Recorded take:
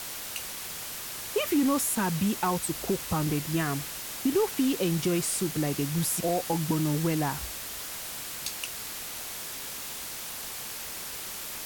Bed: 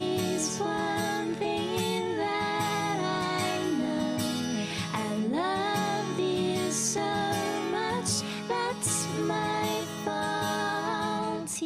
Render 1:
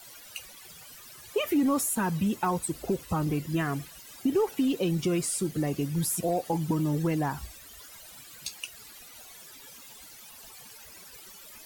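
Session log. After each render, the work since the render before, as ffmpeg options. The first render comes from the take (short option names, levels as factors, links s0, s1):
-af "afftdn=nr=16:nf=-38"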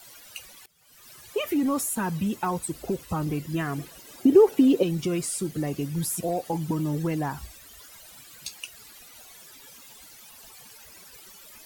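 -filter_complex "[0:a]asettb=1/sr,asplit=3[s0][s1][s2];[s0]atrim=end=3.784[s3];[s1]atrim=start=3.78:end=4.83,asetpts=PTS-STARTPTS,afade=t=in:d=0.004:c=qsin,afade=t=out:st=1.046:d=0.004:c=qsin,equalizer=f=390:t=o:w=1.8:g=10.5[s4];[s2]atrim=start=4.826[s5];[s3][s4]acrossfade=d=0.004:c1=hsin:c2=qsin[s6];[s6][s5]acrossfade=d=0.004:c1=qsin:c2=hsin,asplit=2[s7][s8];[s7]atrim=end=0.66,asetpts=PTS-STARTPTS,afade=t=out:st=0.656:d=0.004:c=hsin:silence=0.0944061[s9];[s8]atrim=start=0.66,asetpts=PTS-STARTPTS,afade=t=in:d=0.44:c=qua:silence=0.0944061[s10];[s9][s10]concat=n=2:v=0:a=1"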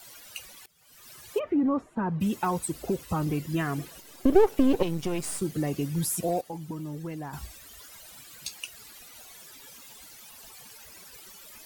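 -filter_complex "[0:a]asplit=3[s0][s1][s2];[s0]afade=t=out:st=1.38:d=0.02[s3];[s1]lowpass=1200,afade=t=in:st=1.38:d=0.02,afade=t=out:st=2.2:d=0.02[s4];[s2]afade=t=in:st=2.2:d=0.02[s5];[s3][s4][s5]amix=inputs=3:normalize=0,asettb=1/sr,asplit=3[s6][s7][s8];[s6]atrim=end=4.004[s9];[s7]atrim=start=4:end=5.42,asetpts=PTS-STARTPTS,afade=t=in:d=0.004:c=qsin,afade=t=out:st=1.416:d=0.004:c=qsin,aeval=exprs='if(lt(val(0),0),0.251*val(0),val(0))':c=same[s10];[s8]atrim=start=5.416[s11];[s9][s10]acrossfade=d=0.004:c1=hsin:c2=qsin[s12];[s12][s11]acrossfade=d=0.004:c1=qsin:c2=hsin,asplit=3[s13][s14][s15];[s13]atrim=end=6.412[s16];[s14]atrim=start=6.408:end=7.332,asetpts=PTS-STARTPTS,volume=0.355[s17];[s15]atrim=start=7.328[s18];[s16][s17]acrossfade=d=0.004:c1=hsin:c2=hsin[s19];[s19][s18]acrossfade=d=0.004:c1=hsin:c2=hsin"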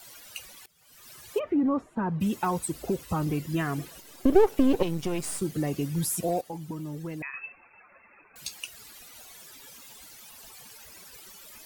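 -filter_complex "[0:a]asettb=1/sr,asplit=3[s0][s1][s2];[s0]atrim=end=7.224[s3];[s1]atrim=start=7.22:end=8.36,asetpts=PTS-STARTPTS,afade=t=in:d=0.004:c=qsin,afade=t=out:st=1.136:d=0.004:c=qsin,lowpass=f=2300:t=q:w=0.5098,lowpass=f=2300:t=q:w=0.6013,lowpass=f=2300:t=q:w=0.9,lowpass=f=2300:t=q:w=2.563,afreqshift=-2700[s4];[s2]atrim=start=8.356[s5];[s3][s4]acrossfade=d=0.004:c1=hsin:c2=qsin[s6];[s6][s5]acrossfade=d=0.004:c1=qsin:c2=hsin"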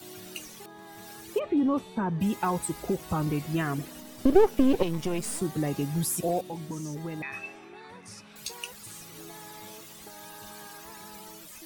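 -filter_complex "[1:a]volume=0.126[s0];[0:a][s0]amix=inputs=2:normalize=0"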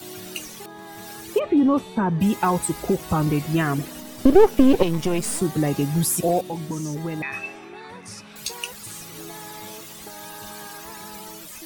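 -af "volume=2.24,alimiter=limit=0.794:level=0:latency=1"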